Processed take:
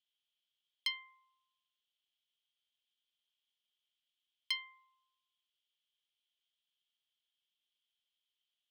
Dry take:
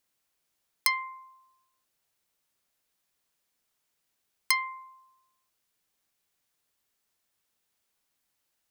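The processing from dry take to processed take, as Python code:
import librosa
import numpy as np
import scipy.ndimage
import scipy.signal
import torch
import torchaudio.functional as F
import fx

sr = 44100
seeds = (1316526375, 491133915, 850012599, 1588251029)

y = fx.bandpass_q(x, sr, hz=3200.0, q=11.0)
y = F.gain(torch.from_numpy(y), 6.5).numpy()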